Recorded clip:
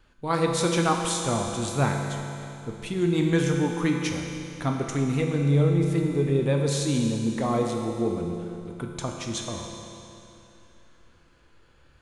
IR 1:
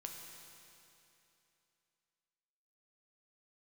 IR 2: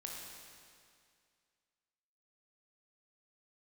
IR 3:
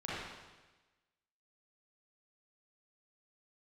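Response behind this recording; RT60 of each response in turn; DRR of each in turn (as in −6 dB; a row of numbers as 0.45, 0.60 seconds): 1; 2.9, 2.2, 1.2 seconds; 1.0, −2.0, −9.0 decibels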